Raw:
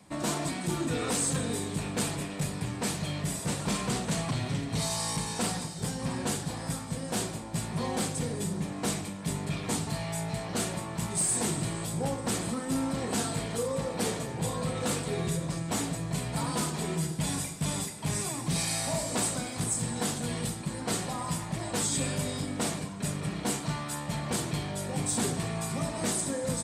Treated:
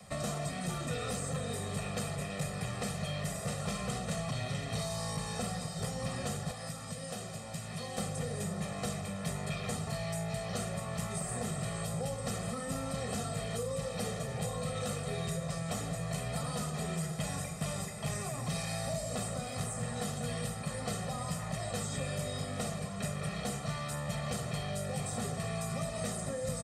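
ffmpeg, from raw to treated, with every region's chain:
ffmpeg -i in.wav -filter_complex "[0:a]asettb=1/sr,asplit=3[link_01][link_02][link_03];[link_01]atrim=end=6.514[link_04];[link_02]atrim=start=6.51:end=7.98,asetpts=PTS-STARTPTS,afade=type=in:duration=0.004:curve=qsin,afade=type=out:start_time=1.466:duration=0.004:curve=qsin,highpass=80,acrossover=split=2100|7400[link_05][link_06][link_07];[link_05]acompressor=threshold=-44dB:ratio=4[link_08];[link_06]acompressor=threshold=-50dB:ratio=4[link_09];[link_07]acompressor=threshold=-53dB:ratio=4[link_10];[link_08][link_09][link_10]amix=inputs=3:normalize=0[link_11];[link_03]atrim=start=7.976[link_12];[link_04][link_11]acrossfade=duration=0.004:curve1=hsin:curve2=qsin[link_13];[link_13][link_12]acrossfade=duration=0.004:curve1=qsin:curve2=hsin,aecho=1:1:1.6:0.91,acrossover=split=220|470|2300[link_14][link_15][link_16][link_17];[link_14]acompressor=threshold=-40dB:ratio=4[link_18];[link_15]acompressor=threshold=-47dB:ratio=4[link_19];[link_16]acompressor=threshold=-44dB:ratio=4[link_20];[link_17]acompressor=threshold=-46dB:ratio=4[link_21];[link_18][link_19][link_20][link_21]amix=inputs=4:normalize=0,volume=1.5dB" out.wav

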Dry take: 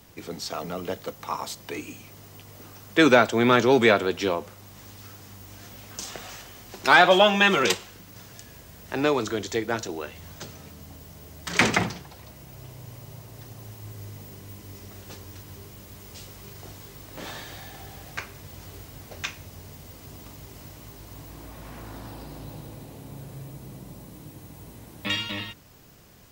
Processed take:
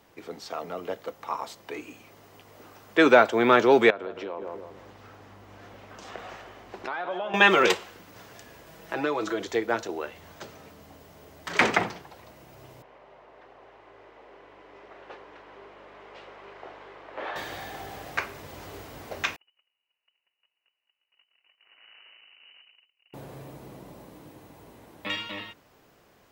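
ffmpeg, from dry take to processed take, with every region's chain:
ffmpeg -i in.wav -filter_complex "[0:a]asettb=1/sr,asplit=3[link_01][link_02][link_03];[link_01]atrim=end=3.904[link_04];[link_02]atrim=start=3.9:end=7.34,asetpts=PTS-STARTPTS,afade=type=in:duration=0.004:curve=qsin,afade=type=out:start_time=3.436:duration=0.004:curve=qsin,asplit=2[link_05][link_06];[link_06]adelay=161,lowpass=frequency=1100:poles=1,volume=-9.5dB,asplit=2[link_07][link_08];[link_08]adelay=161,lowpass=frequency=1100:poles=1,volume=0.39,asplit=2[link_09][link_10];[link_10]adelay=161,lowpass=frequency=1100:poles=1,volume=0.39,asplit=2[link_11][link_12];[link_12]adelay=161,lowpass=frequency=1100:poles=1,volume=0.39[link_13];[link_05][link_07][link_09][link_11][link_13]amix=inputs=5:normalize=0,atrim=end_sample=151704,acompressor=threshold=-31dB:ratio=8:attack=3.2:release=140:knee=1:detection=peak,lowpass=frequency=2300:poles=1[link_14];[link_03]atrim=start=7.336[link_15];[link_04][link_14]acrossfade=duration=0.004:curve1=hsin:curve2=qsin[link_16];[link_16][link_15]acrossfade=duration=0.004:curve1=qsin:curve2=hsin,asettb=1/sr,asplit=3[link_17][link_18][link_19];[link_17]atrim=end=8.664[link_20];[link_18]atrim=start=8.66:end=9.45,asetpts=PTS-STARTPTS,afade=type=in:duration=0.004:curve=qsin,afade=type=out:start_time=0.786:duration=0.004:curve=qsin,acompressor=threshold=-28dB:ratio=2.5:attack=3.2:release=140:knee=1:detection=peak,aecho=1:1:6.1:0.73,atrim=end_sample=34839[link_21];[link_19]atrim=start=9.446[link_22];[link_20][link_21]acrossfade=duration=0.004:curve1=hsin:curve2=qsin[link_23];[link_23][link_22]acrossfade=duration=0.004:curve1=qsin:curve2=hsin,asettb=1/sr,asplit=3[link_24][link_25][link_26];[link_24]atrim=end=12.824[link_27];[link_25]atrim=start=12.82:end=17.36,asetpts=PTS-STARTPTS,afade=type=in:duration=0.004:curve=qsin,afade=type=out:start_time=4.536:duration=0.004:curve=qsin,lowpass=5700,acrossover=split=350 3000:gain=0.0708 1 0.126[link_28][link_29][link_30];[link_28][link_29][link_30]amix=inputs=3:normalize=0,aeval=exprs='val(0)+0.001*(sin(2*PI*50*n/s)+sin(2*PI*2*50*n/s)/2+sin(2*PI*3*50*n/s)/3+sin(2*PI*4*50*n/s)/4+sin(2*PI*5*50*n/s)/5)':channel_layout=same[link_31];[link_26]atrim=start=17.356[link_32];[link_27][link_31]acrossfade=duration=0.004:curve1=hsin:curve2=qsin[link_33];[link_33][link_32]acrossfade=duration=0.004:curve1=qsin:curve2=hsin,asettb=1/sr,asplit=3[link_34][link_35][link_36];[link_34]atrim=end=19.364[link_37];[link_35]atrim=start=19.36:end=23.14,asetpts=PTS-STARTPTS,afade=type=in:duration=0.004:curve=qsin,afade=type=out:start_time=3.776:duration=0.004:curve=qsin,agate=range=-38dB:threshold=-39dB:ratio=16:release=100:detection=peak,aeval=exprs='(tanh(562*val(0)+0.7)-tanh(0.7))/562':channel_layout=same,lowpass=frequency=2600:width_type=q:width=0.5098,lowpass=frequency=2600:width_type=q:width=0.6013,lowpass=frequency=2600:width_type=q:width=0.9,lowpass=frequency=2600:width_type=q:width=2.563,afreqshift=-3000[link_38];[link_36]atrim=start=23.136[link_39];[link_37][link_38]acrossfade=duration=0.004:curve1=hsin:curve2=qsin[link_40];[link_40][link_39]acrossfade=duration=0.004:curve1=qsin:curve2=hsin,bass=frequency=250:gain=-13,treble=frequency=4000:gain=-4,dynaudnorm=framelen=280:gausssize=21:maxgain=8dB,highshelf=frequency=2800:gain=-8.5" out.wav

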